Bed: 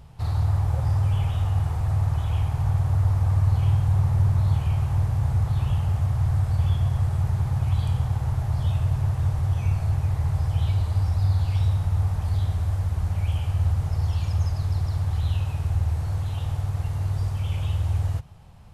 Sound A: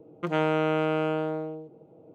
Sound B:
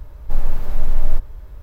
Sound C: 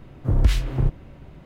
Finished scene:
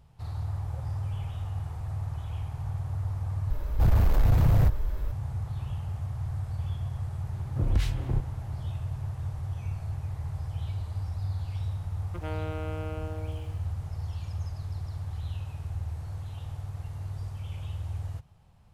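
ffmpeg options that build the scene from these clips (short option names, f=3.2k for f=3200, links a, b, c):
-filter_complex "[0:a]volume=-10.5dB[a];[2:a]aeval=exprs='0.75*sin(PI/2*6.31*val(0)/0.75)':c=same[b];[1:a]aeval=exprs='val(0)*gte(abs(val(0)),0.00596)':c=same[c];[a]asplit=2[d][e];[d]atrim=end=3.504[f];[b]atrim=end=1.62,asetpts=PTS-STARTPTS,volume=-13.5dB[g];[e]atrim=start=5.116[h];[3:a]atrim=end=1.45,asetpts=PTS-STARTPTS,volume=-7.5dB,afade=t=in:d=0.004:c=hsin,afade=t=out:st=1.446:d=0.004:c=hsin,adelay=7310[i];[c]atrim=end=2.14,asetpts=PTS-STARTPTS,volume=-12.5dB,afade=t=in:d=0.004:c=hsin,afade=t=out:st=2.136:d=0.004:c=hsin,adelay=11910[j];[f][g]acrossfade=d=0.004:c1=hsin:c2=hsin[k];[k][h]acrossfade=d=0.004:c1=hsin:c2=hsin[l];[l][i][j]amix=inputs=3:normalize=0"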